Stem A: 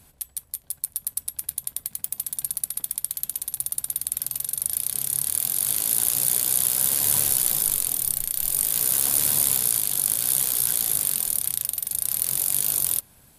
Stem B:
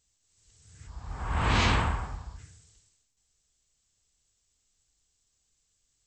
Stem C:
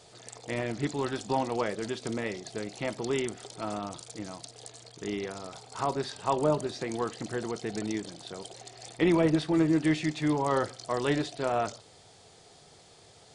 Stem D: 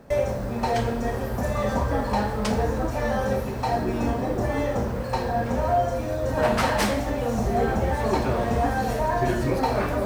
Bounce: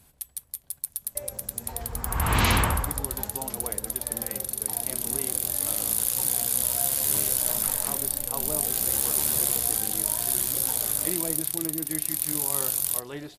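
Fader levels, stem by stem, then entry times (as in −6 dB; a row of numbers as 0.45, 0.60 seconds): −3.5, +2.5, −10.0, −17.5 decibels; 0.00, 0.85, 2.05, 1.05 seconds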